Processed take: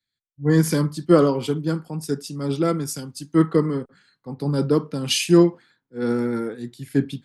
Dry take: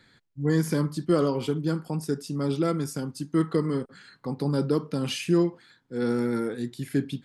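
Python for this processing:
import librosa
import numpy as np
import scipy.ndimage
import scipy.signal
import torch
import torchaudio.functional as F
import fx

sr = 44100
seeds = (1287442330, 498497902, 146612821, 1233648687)

y = fx.band_widen(x, sr, depth_pct=100)
y = F.gain(torch.from_numpy(y), 4.0).numpy()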